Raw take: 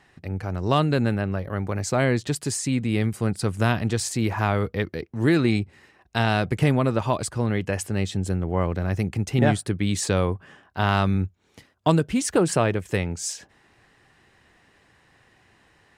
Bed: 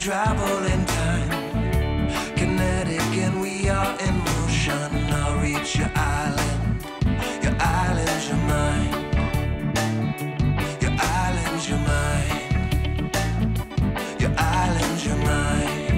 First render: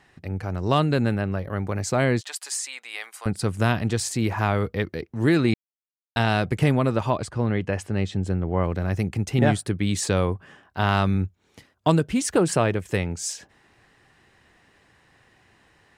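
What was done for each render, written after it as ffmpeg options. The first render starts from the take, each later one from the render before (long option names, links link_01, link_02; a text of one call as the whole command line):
ffmpeg -i in.wav -filter_complex "[0:a]asettb=1/sr,asplit=3[link_01][link_02][link_03];[link_01]atrim=end=2.214[link_04];[link_02]atrim=start=2.21:end=3.26,asetpts=PTS-STARTPTS,afade=type=in:duration=0.004:curve=qsin,afade=type=out:start_time=1.046:duration=0.004:curve=qsin,highpass=frequency=780:width=0.5412,highpass=frequency=780:width=1.3066[link_05];[link_03]atrim=start=3.256[link_06];[link_04][link_05]acrossfade=duration=0.004:curve1=hsin:curve2=qsin[link_07];[link_07][link_06]acrossfade=duration=0.004:curve1=qsin:curve2=hsin,asettb=1/sr,asplit=3[link_08][link_09][link_10];[link_08]atrim=end=7.104[link_11];[link_09]atrim=start=7.1:end=8.64,asetpts=PTS-STARTPTS,afade=type=in:duration=0.004:curve=qsin,afade=type=out:start_time=1.536:duration=0.004:curve=qsin,aemphasis=mode=reproduction:type=50fm[link_12];[link_10]atrim=start=8.636[link_13];[link_11][link_12]acrossfade=duration=0.004:curve1=hsin:curve2=qsin[link_14];[link_14][link_13]acrossfade=duration=0.004:curve1=qsin:curve2=hsin,asplit=3[link_15][link_16][link_17];[link_15]atrim=end=5.54,asetpts=PTS-STARTPTS,afade=type=out:start_time=5.536:duration=0.004:curve=hsin[link_18];[link_16]atrim=start=5.54:end=6.16,asetpts=PTS-STARTPTS,volume=0[link_19];[link_17]atrim=start=6.16,asetpts=PTS-STARTPTS,afade=type=in:duration=0.004:curve=hsin[link_20];[link_18][link_19][link_20]concat=n=3:v=0:a=1" out.wav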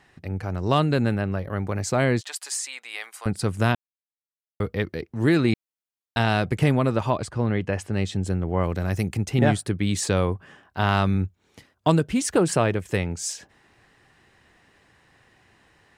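ffmpeg -i in.wav -filter_complex "[0:a]asettb=1/sr,asplit=3[link_01][link_02][link_03];[link_01]atrim=end=7.934[link_04];[link_02]atrim=start=7.93:end=9.17,asetpts=PTS-STARTPTS,afade=type=in:duration=0.004:curve=qsin,afade=type=out:start_time=1.236:duration=0.004:curve=qsin,aemphasis=mode=production:type=cd[link_05];[link_03]atrim=start=9.166[link_06];[link_04][link_05]acrossfade=duration=0.004:curve1=hsin:curve2=qsin[link_07];[link_07][link_06]acrossfade=duration=0.004:curve1=qsin:curve2=hsin,asplit=3[link_08][link_09][link_10];[link_08]atrim=end=3.75,asetpts=PTS-STARTPTS,afade=type=out:start_time=3.746:duration=0.004:curve=hsin[link_11];[link_09]atrim=start=3.75:end=4.6,asetpts=PTS-STARTPTS,volume=0[link_12];[link_10]atrim=start=4.6,asetpts=PTS-STARTPTS,afade=type=in:duration=0.004:curve=hsin[link_13];[link_11][link_12][link_13]concat=n=3:v=0:a=1" out.wav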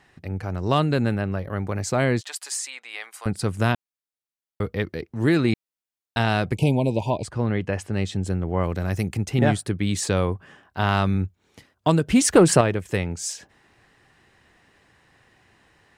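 ffmpeg -i in.wav -filter_complex "[0:a]asettb=1/sr,asplit=3[link_01][link_02][link_03];[link_01]atrim=end=2.704[link_04];[link_02]atrim=start=2.7:end=3.11,asetpts=PTS-STARTPTS,afade=type=in:duration=0.004:curve=qsin,afade=type=out:start_time=0.406:duration=0.004:curve=qsin,highshelf=frequency=8200:gain=-11.5[link_05];[link_03]atrim=start=3.106[link_06];[link_04][link_05]acrossfade=duration=0.004:curve1=hsin:curve2=qsin[link_07];[link_07][link_06]acrossfade=duration=0.004:curve1=qsin:curve2=hsin,asplit=3[link_08][link_09][link_10];[link_08]afade=type=out:start_time=6.53:duration=0.02[link_11];[link_09]asuperstop=centerf=1500:order=20:qfactor=1.2,afade=type=in:start_time=6.53:duration=0.02,afade=type=out:start_time=7.23:duration=0.02[link_12];[link_10]afade=type=in:start_time=7.23:duration=0.02[link_13];[link_11][link_12][link_13]amix=inputs=3:normalize=0,asettb=1/sr,asplit=3[link_14][link_15][link_16];[link_14]atrim=end=12.074[link_17];[link_15]atrim=start=12.07:end=12.61,asetpts=PTS-STARTPTS,afade=type=in:duration=0.004:curve=qsin,afade=type=out:start_time=0.536:duration=0.004:curve=qsin,acontrast=66[link_18];[link_16]atrim=start=12.606[link_19];[link_17][link_18]acrossfade=duration=0.004:curve1=hsin:curve2=qsin[link_20];[link_20][link_19]acrossfade=duration=0.004:curve1=qsin:curve2=hsin" out.wav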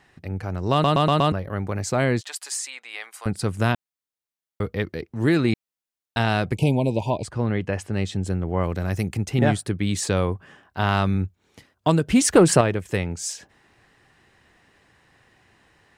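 ffmpeg -i in.wav -filter_complex "[0:a]asplit=6[link_01][link_02][link_03][link_04][link_05][link_06];[link_01]atrim=end=0.842[link_07];[link_02]atrim=start=0.718:end=0.842[link_08];[link_03]atrim=start=0.718:end=0.842[link_09];[link_04]atrim=start=0.718:end=0.842[link_10];[link_05]atrim=start=0.718:end=0.842[link_11];[link_06]atrim=start=1.318[link_12];[link_07][link_08]acrossfade=duration=0.004:curve1=hsin:curve2=hsin[link_13];[link_13][link_09]acrossfade=duration=0.004:curve1=hsin:curve2=hsin[link_14];[link_14][link_10]acrossfade=duration=0.004:curve1=hsin:curve2=hsin[link_15];[link_15][link_11]acrossfade=duration=0.004:curve1=hsin:curve2=hsin[link_16];[link_16][link_12]acrossfade=duration=0.004:curve1=hsin:curve2=hsin" out.wav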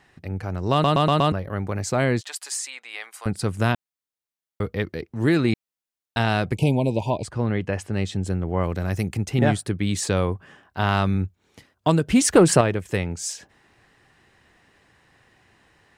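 ffmpeg -i in.wav -af anull out.wav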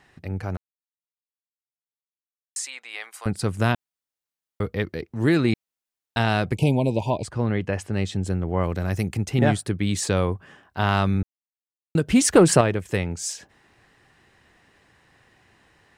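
ffmpeg -i in.wav -filter_complex "[0:a]asplit=5[link_01][link_02][link_03][link_04][link_05];[link_01]atrim=end=0.57,asetpts=PTS-STARTPTS,afade=type=out:start_time=0.566:duration=0.004:curve=hsin[link_06];[link_02]atrim=start=0.57:end=2.56,asetpts=PTS-STARTPTS,volume=0[link_07];[link_03]atrim=start=2.56:end=11.23,asetpts=PTS-STARTPTS,afade=type=in:duration=0.004:curve=hsin,afade=type=out:start_time=8.666:duration=0.004:curve=hsin[link_08];[link_04]atrim=start=11.23:end=11.95,asetpts=PTS-STARTPTS,volume=0[link_09];[link_05]atrim=start=11.95,asetpts=PTS-STARTPTS,afade=type=in:duration=0.004:curve=hsin[link_10];[link_06][link_07][link_08][link_09][link_10]concat=n=5:v=0:a=1" out.wav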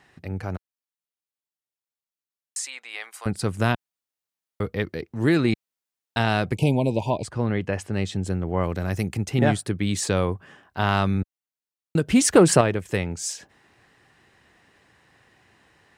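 ffmpeg -i in.wav -af "highpass=frequency=66:poles=1" out.wav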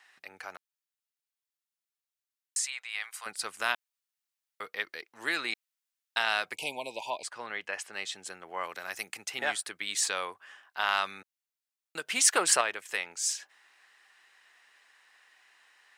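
ffmpeg -i in.wav -af "highpass=1200" out.wav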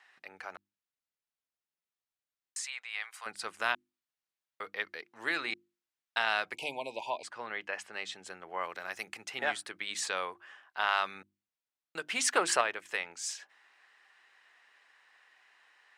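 ffmpeg -i in.wav -af "lowpass=frequency=3000:poles=1,bandreject=frequency=50:width_type=h:width=6,bandreject=frequency=100:width_type=h:width=6,bandreject=frequency=150:width_type=h:width=6,bandreject=frequency=200:width_type=h:width=6,bandreject=frequency=250:width_type=h:width=6,bandreject=frequency=300:width_type=h:width=6,bandreject=frequency=350:width_type=h:width=6" out.wav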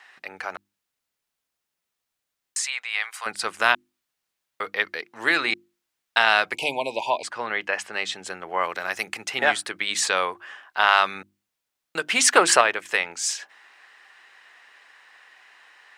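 ffmpeg -i in.wav -af "volume=11.5dB,alimiter=limit=-1dB:level=0:latency=1" out.wav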